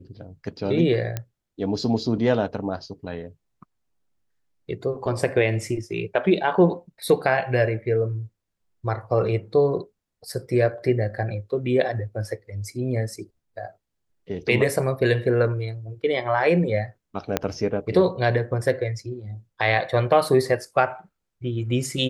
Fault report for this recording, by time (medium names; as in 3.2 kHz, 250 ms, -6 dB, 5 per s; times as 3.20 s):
1.17 s: pop -13 dBFS
17.37 s: pop -6 dBFS